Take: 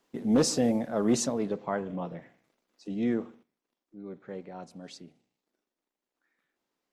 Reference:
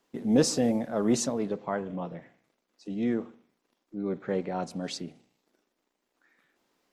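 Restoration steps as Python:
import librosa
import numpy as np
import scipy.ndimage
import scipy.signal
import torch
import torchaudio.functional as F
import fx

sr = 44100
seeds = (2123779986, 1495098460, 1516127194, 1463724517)

y = fx.fix_declip(x, sr, threshold_db=-16.0)
y = fx.fix_level(y, sr, at_s=3.43, step_db=10.5)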